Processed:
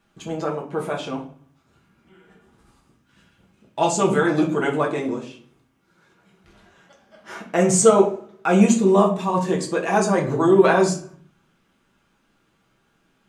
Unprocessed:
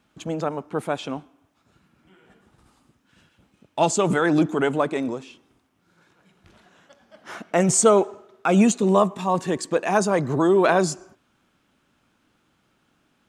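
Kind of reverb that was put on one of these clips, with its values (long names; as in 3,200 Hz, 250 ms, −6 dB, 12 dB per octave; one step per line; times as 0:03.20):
rectangular room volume 32 cubic metres, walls mixed, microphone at 0.67 metres
level −3 dB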